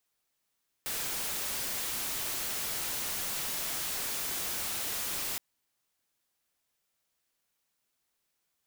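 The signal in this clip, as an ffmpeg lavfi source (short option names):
-f lavfi -i "anoisesrc=c=white:a=0.0326:d=4.52:r=44100:seed=1"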